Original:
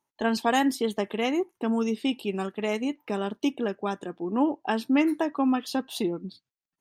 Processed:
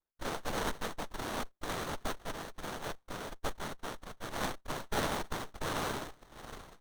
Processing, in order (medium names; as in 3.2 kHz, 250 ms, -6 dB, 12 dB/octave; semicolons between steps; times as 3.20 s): tape stop on the ending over 2.18 s; noise-vocoded speech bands 1; sliding maximum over 17 samples; trim -8.5 dB